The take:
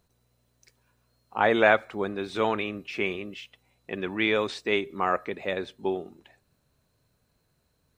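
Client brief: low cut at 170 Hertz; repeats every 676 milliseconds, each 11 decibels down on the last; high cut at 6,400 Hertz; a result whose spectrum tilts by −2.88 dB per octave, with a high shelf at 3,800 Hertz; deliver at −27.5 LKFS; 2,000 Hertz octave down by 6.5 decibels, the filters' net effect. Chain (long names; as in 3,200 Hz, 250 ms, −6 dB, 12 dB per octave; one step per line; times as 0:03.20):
high-pass filter 170 Hz
low-pass filter 6,400 Hz
parametric band 2,000 Hz −7.5 dB
high-shelf EQ 3,800 Hz −4 dB
repeating echo 676 ms, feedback 28%, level −11 dB
level +1.5 dB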